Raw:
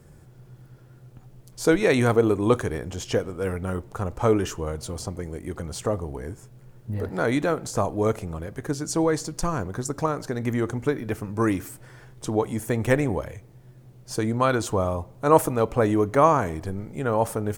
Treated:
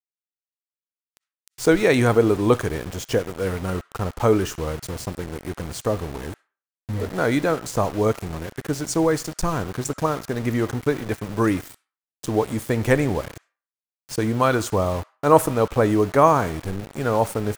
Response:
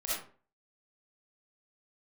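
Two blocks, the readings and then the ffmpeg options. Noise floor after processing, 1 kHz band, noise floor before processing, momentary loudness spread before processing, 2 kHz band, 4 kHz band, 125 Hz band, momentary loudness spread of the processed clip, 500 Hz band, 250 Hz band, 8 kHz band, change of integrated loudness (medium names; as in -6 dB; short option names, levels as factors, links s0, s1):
under -85 dBFS, +2.5 dB, -50 dBFS, 14 LU, +3.0 dB, +3.5 dB, +2.0 dB, 14 LU, +2.5 dB, +2.5 dB, +2.0 dB, +2.5 dB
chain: -filter_complex "[0:a]aeval=exprs='val(0)*gte(abs(val(0)),0.02)':c=same,asplit=2[s0][s1];[s1]highpass=f=1400:t=q:w=1.8[s2];[1:a]atrim=start_sample=2205,lowpass=8900[s3];[s2][s3]afir=irnorm=-1:irlink=0,volume=0.0562[s4];[s0][s4]amix=inputs=2:normalize=0,volume=1.33"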